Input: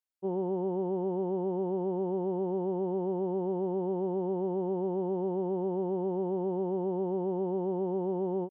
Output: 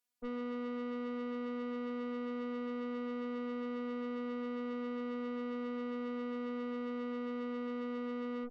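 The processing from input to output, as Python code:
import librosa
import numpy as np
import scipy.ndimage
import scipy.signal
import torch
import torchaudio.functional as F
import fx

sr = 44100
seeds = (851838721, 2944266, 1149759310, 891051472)

y = fx.robotise(x, sr, hz=244.0)
y = fx.tube_stage(y, sr, drive_db=46.0, bias=0.45)
y = F.gain(torch.from_numpy(y), 9.0).numpy()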